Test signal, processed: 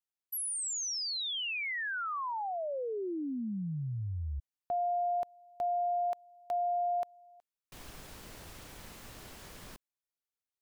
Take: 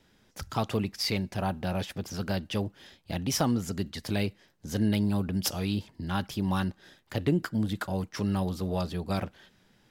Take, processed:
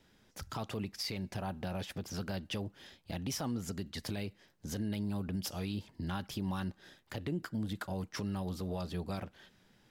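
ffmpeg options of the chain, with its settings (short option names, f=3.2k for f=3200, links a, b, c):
-af "alimiter=level_in=1dB:limit=-24dB:level=0:latency=1:release=177,volume=-1dB,volume=-2.5dB"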